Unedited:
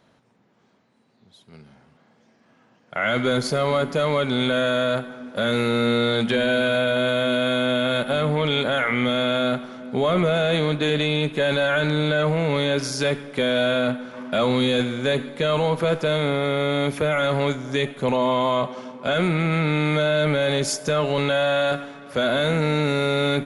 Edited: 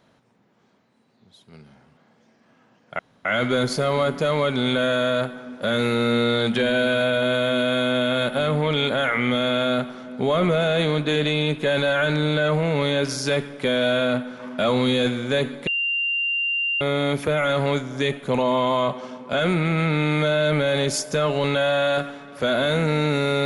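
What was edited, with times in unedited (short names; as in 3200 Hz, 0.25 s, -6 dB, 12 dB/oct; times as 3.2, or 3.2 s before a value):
2.99 insert room tone 0.26 s
15.41–16.55 bleep 2780 Hz -20.5 dBFS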